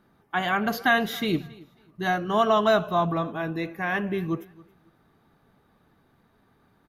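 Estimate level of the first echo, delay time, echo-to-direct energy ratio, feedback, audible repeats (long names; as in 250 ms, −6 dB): −22.5 dB, 273 ms, −22.5 dB, 24%, 2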